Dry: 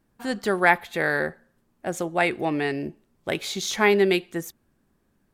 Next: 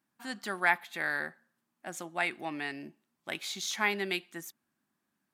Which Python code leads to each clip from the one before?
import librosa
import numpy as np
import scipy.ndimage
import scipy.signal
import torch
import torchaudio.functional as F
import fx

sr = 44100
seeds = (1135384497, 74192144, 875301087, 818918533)

y = scipy.signal.sosfilt(scipy.signal.butter(2, 260.0, 'highpass', fs=sr, output='sos'), x)
y = fx.peak_eq(y, sr, hz=460.0, db=-14.0, octaves=0.88)
y = F.gain(torch.from_numpy(y), -6.0).numpy()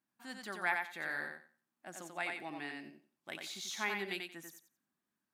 y = fx.echo_thinned(x, sr, ms=90, feedback_pct=21, hz=190.0, wet_db=-4)
y = F.gain(torch.from_numpy(y), -8.0).numpy()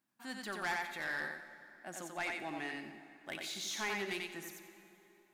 y = 10.0 ** (-34.5 / 20.0) * np.tanh(x / 10.0 ** (-34.5 / 20.0))
y = fx.rev_plate(y, sr, seeds[0], rt60_s=3.3, hf_ratio=0.7, predelay_ms=0, drr_db=10.5)
y = F.gain(torch.from_numpy(y), 3.0).numpy()